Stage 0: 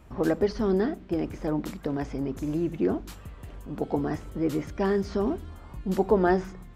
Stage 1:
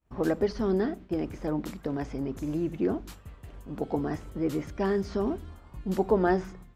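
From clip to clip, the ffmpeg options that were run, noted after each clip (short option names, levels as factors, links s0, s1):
-af "agate=range=0.0224:threshold=0.0112:ratio=3:detection=peak,volume=0.794"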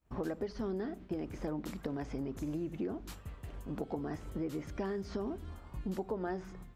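-af "acompressor=threshold=0.0178:ratio=5"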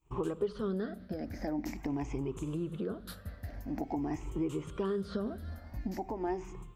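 -af "afftfilt=real='re*pow(10,14/40*sin(2*PI*(0.69*log(max(b,1)*sr/1024/100)/log(2)-(0.46)*(pts-256)/sr)))':imag='im*pow(10,14/40*sin(2*PI*(0.69*log(max(b,1)*sr/1024/100)/log(2)-(0.46)*(pts-256)/sr)))':win_size=1024:overlap=0.75"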